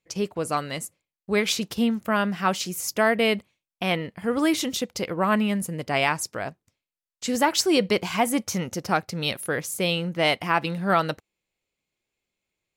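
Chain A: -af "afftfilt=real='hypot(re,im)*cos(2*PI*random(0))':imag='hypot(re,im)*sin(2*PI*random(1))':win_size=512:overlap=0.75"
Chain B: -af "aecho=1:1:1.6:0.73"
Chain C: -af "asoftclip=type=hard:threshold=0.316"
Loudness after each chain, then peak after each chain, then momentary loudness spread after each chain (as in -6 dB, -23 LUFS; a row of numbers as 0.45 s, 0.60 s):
-31.0 LUFS, -23.5 LUFS, -25.0 LUFS; -12.5 dBFS, -7.0 dBFS, -10.0 dBFS; 8 LU, 9 LU, 9 LU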